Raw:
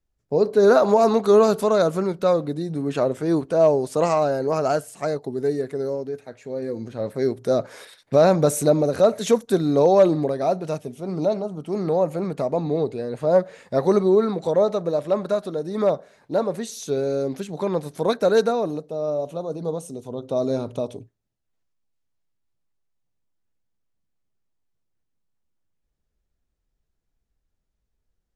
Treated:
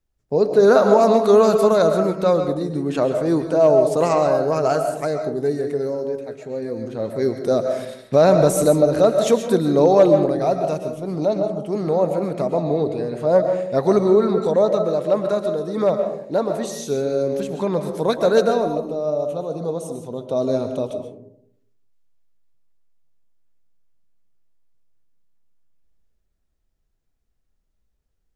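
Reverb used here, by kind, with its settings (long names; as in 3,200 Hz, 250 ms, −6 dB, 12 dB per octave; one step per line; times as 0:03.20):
comb and all-pass reverb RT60 0.71 s, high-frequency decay 0.3×, pre-delay 90 ms, DRR 6.5 dB
level +1.5 dB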